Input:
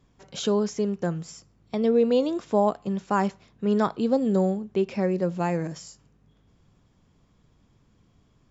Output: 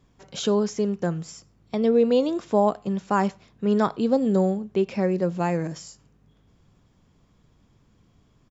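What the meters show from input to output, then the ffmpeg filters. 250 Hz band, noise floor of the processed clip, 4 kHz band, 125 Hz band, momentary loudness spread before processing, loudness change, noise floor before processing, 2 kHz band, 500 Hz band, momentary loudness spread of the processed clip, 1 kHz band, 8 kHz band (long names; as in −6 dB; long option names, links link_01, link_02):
+1.5 dB, −62 dBFS, +1.5 dB, +1.5 dB, 10 LU, +1.5 dB, −63 dBFS, +1.5 dB, +1.5 dB, 10 LU, +1.5 dB, can't be measured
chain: -filter_complex "[0:a]asplit=2[link_01][link_02];[link_02]adelay=93.29,volume=-29dB,highshelf=frequency=4000:gain=-2.1[link_03];[link_01][link_03]amix=inputs=2:normalize=0,volume=1.5dB"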